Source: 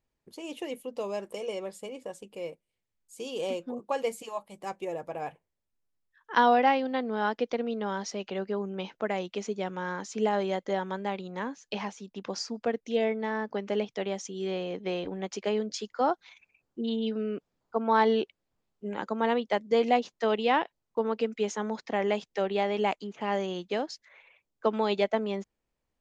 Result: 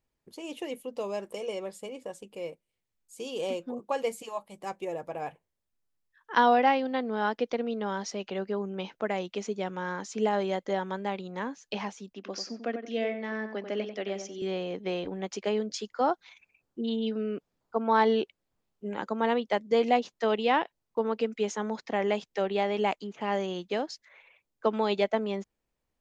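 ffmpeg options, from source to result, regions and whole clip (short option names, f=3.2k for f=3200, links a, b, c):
-filter_complex "[0:a]asettb=1/sr,asplit=3[a][b][c];[a]atrim=end=12.134[d];[b]atrim=start=12.13:end=14.42,asetpts=PTS-STARTPTS,afade=t=in:d=0.004:c=qsin,afade=t=out:st=2.286:d=0.004:c=qsin,highpass=f=220:w=0.5412,highpass=f=220:w=1.3066,equalizer=f=460:t=q:w=4:g=-5,equalizer=f=910:t=q:w=4:g=-10,equalizer=f=3.8k:t=q:w=4:g=-4,lowpass=f=6.3k:w=0.5412,lowpass=f=6.3k:w=1.3066,asplit=2[e][f];[f]adelay=92,lowpass=f=2.3k:p=1,volume=-7.5dB,asplit=2[g][h];[h]adelay=92,lowpass=f=2.3k:p=1,volume=0.27,asplit=2[i][j];[j]adelay=92,lowpass=f=2.3k:p=1,volume=0.27[k];[e][g][i][k]amix=inputs=4:normalize=0,atrim=end_sample=100989[l];[c]atrim=start=14.416[m];[d][l]acrossfade=d=0.004:c1=hsin:c2=qsin[n];[n][m]acrossfade=d=0.004:c1=qsin:c2=hsin"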